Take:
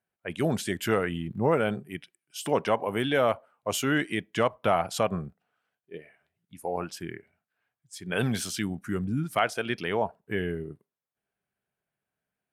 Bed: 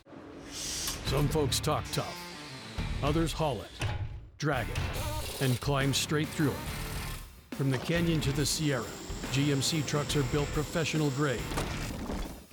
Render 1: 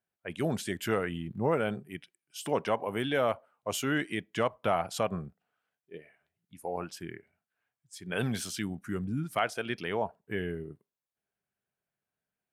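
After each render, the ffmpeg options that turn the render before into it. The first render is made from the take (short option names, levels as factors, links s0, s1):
-af "volume=0.631"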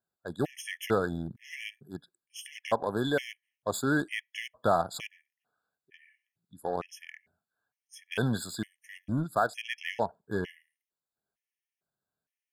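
-filter_complex "[0:a]asplit=2[s0][s1];[s1]acrusher=bits=4:mix=0:aa=0.5,volume=0.422[s2];[s0][s2]amix=inputs=2:normalize=0,afftfilt=real='re*gt(sin(2*PI*1.1*pts/sr)*(1-2*mod(floor(b*sr/1024/1700),2)),0)':imag='im*gt(sin(2*PI*1.1*pts/sr)*(1-2*mod(floor(b*sr/1024/1700),2)),0)':win_size=1024:overlap=0.75"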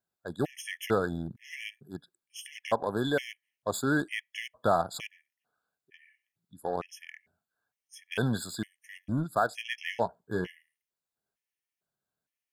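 -filter_complex "[0:a]asettb=1/sr,asplit=3[s0][s1][s2];[s0]atrim=end=9.494[s3];[s1]atrim=start=9.49:end=10.48,asetpts=PTS-STARTPTS,afade=t=in:d=0.004:c=qsin,afade=t=out:st=0.986:d=0.004:c=qsin,asplit=2[s4][s5];[s5]adelay=17,volume=0.299[s6];[s4][s6]amix=inputs=2:normalize=0,atrim=end_sample=43659[s7];[s2]atrim=start=10.476[s8];[s3][s7]acrossfade=d=0.004:c1=hsin:c2=qsin[s9];[s9][s8]acrossfade=d=0.004:c1=qsin:c2=hsin"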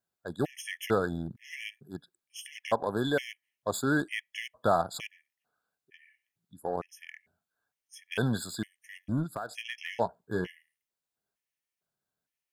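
-filter_complex "[0:a]asettb=1/sr,asplit=3[s0][s1][s2];[s0]atrim=end=6.594[s3];[s1]atrim=start=6.59:end=6.99,asetpts=PTS-STARTPTS,afade=t=in:d=0.004:c=qsin,afade=t=out:st=0.396:d=0.004:c=qsin,equalizer=f=3300:w=0.98:g=-12[s4];[s2]atrim=start=6.986[s5];[s3][s4]acrossfade=d=0.004:c1=hsin:c2=qsin[s6];[s6][s5]acrossfade=d=0.004:c1=qsin:c2=hsin,asettb=1/sr,asplit=3[s7][s8][s9];[s7]atrim=end=9.284[s10];[s8]atrim=start=9.28:end=9.93,asetpts=PTS-STARTPTS,afade=t=in:d=0.004:c=qsin,afade=t=out:st=0.646:d=0.004:c=qsin,acompressor=threshold=0.0251:ratio=6:attack=3.2:release=140:knee=1:detection=peak[s11];[s9]atrim=start=9.926[s12];[s10][s11]acrossfade=d=0.004:c1=hsin:c2=qsin[s13];[s13][s12]acrossfade=d=0.004:c1=qsin:c2=hsin"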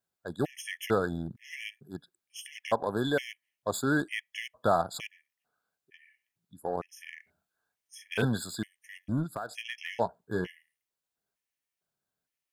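-filter_complex "[0:a]asettb=1/sr,asplit=3[s0][s1][s2];[s0]atrim=end=6.884[s3];[s1]atrim=start=6.88:end=8.25,asetpts=PTS-STARTPTS,afade=t=in:d=0.004:c=qsin,afade=t=out:st=1.366:d=0.004:c=qsin,asplit=2[s4][s5];[s5]adelay=38,volume=0.708[s6];[s4][s6]amix=inputs=2:normalize=0,atrim=end_sample=60417[s7];[s2]atrim=start=8.246[s8];[s3][s7]acrossfade=d=0.004:c1=hsin:c2=qsin[s9];[s9][s8]acrossfade=d=0.004:c1=qsin:c2=hsin"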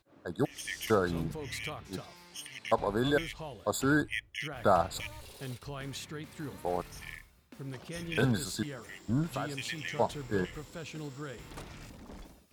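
-filter_complex "[1:a]volume=0.237[s0];[0:a][s0]amix=inputs=2:normalize=0"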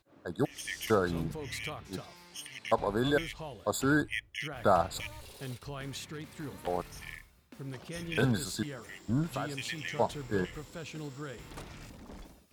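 -filter_complex "[0:a]asettb=1/sr,asplit=3[s0][s1][s2];[s0]atrim=end=6.044[s3];[s1]atrim=start=6.04:end=6.67,asetpts=PTS-STARTPTS,afade=t=in:d=0.004:c=qsin,afade=t=out:st=0.626:d=0.004:c=qsin,aeval=exprs='0.0211*(abs(mod(val(0)/0.0211+3,4)-2)-1)':c=same[s4];[s2]atrim=start=6.666[s5];[s3][s4]acrossfade=d=0.004:c1=hsin:c2=qsin[s6];[s6][s5]acrossfade=d=0.004:c1=qsin:c2=hsin"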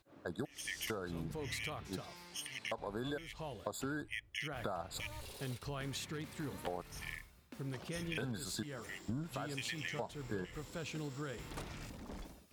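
-af "alimiter=limit=0.1:level=0:latency=1:release=485,acompressor=threshold=0.0141:ratio=6"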